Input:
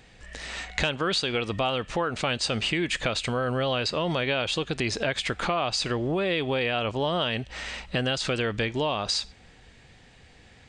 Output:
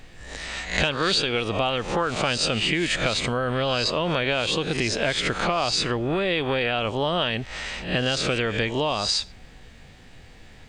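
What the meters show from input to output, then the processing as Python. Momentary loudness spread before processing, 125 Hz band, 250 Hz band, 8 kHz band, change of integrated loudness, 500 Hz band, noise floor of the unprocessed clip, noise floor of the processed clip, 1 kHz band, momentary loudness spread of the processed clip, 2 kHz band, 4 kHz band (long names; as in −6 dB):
5 LU, +2.5 dB, +2.5 dB, +4.5 dB, +3.0 dB, +2.5 dB, −54 dBFS, −47 dBFS, +3.0 dB, 5 LU, +3.5 dB, +4.0 dB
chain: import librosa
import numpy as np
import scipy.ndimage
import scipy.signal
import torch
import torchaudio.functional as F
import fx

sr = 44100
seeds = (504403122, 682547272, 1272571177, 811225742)

y = fx.spec_swells(x, sr, rise_s=0.45)
y = fx.dmg_noise_colour(y, sr, seeds[0], colour='brown', level_db=-49.0)
y = y * 10.0 ** (1.5 / 20.0)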